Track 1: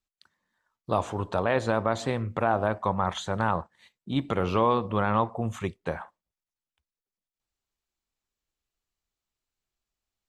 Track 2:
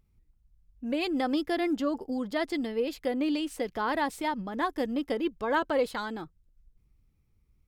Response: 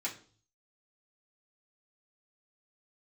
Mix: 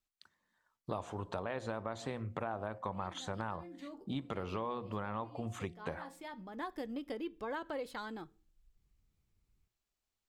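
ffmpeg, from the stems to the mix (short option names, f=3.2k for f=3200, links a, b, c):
-filter_complex "[0:a]bandreject=f=176.6:t=h:w=4,bandreject=f=353.2:t=h:w=4,bandreject=f=529.8:t=h:w=4,bandreject=f=706.4:t=h:w=4,volume=-2dB,asplit=2[a][b];[1:a]adelay=2000,volume=-8dB,asplit=2[c][d];[d]volume=-17.5dB[e];[b]apad=whole_len=426738[f];[c][f]sidechaincompress=threshold=-37dB:ratio=8:attack=5.3:release=878[g];[2:a]atrim=start_sample=2205[h];[e][h]afir=irnorm=-1:irlink=0[i];[a][g][i]amix=inputs=3:normalize=0,bandreject=f=60:t=h:w=6,bandreject=f=120:t=h:w=6,acompressor=threshold=-37dB:ratio=4"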